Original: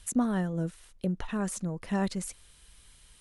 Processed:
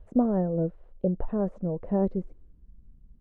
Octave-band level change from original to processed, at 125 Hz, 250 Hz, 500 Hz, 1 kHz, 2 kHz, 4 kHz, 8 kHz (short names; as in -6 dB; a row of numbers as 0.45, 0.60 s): +2.5 dB, +3.0 dB, +8.5 dB, +0.5 dB, under -10 dB, under -25 dB, under -40 dB